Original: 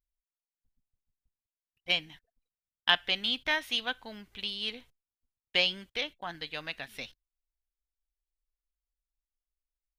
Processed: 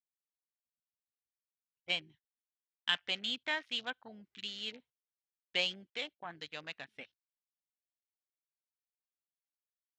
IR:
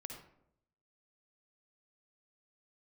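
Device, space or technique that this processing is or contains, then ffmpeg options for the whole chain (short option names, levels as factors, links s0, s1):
over-cleaned archive recording: -filter_complex "[0:a]highpass=110,lowpass=6700,afwtdn=0.00708,asettb=1/sr,asplit=3[s0][s1][s2];[s0]atrim=end=2.114[s3];[s1]atrim=start=2.11:end=2.95,asetpts=PTS-STARTPTS,afade=t=in:d=0.004:c=qsin,afade=t=out:st=0.836:d=0.004:c=qsin,equalizer=f=620:w=1.2:g=-12.5[s4];[s2]atrim=start=2.946[s5];[s3][s4]acrossfade=d=0.004:c1=hsin:c2=qsin[s6];[s6][s5]acrossfade=d=0.004:c1=qsin:c2=hsin,volume=0.501"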